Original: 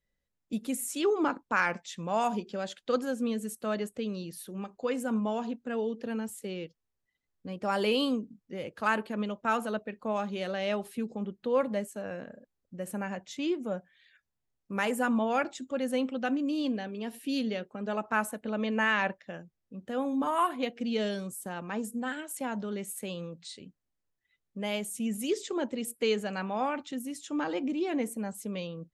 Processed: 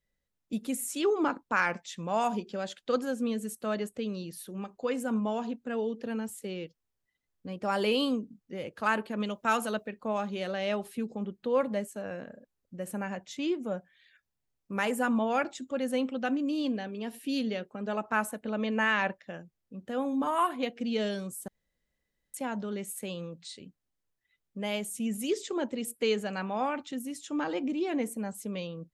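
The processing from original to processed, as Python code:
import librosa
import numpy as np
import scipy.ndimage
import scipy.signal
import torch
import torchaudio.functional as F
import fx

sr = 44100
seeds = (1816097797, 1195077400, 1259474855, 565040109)

y = fx.high_shelf(x, sr, hz=2800.0, db=9.0, at=(9.2, 9.88))
y = fx.edit(y, sr, fx.room_tone_fill(start_s=21.48, length_s=0.86), tone=tone)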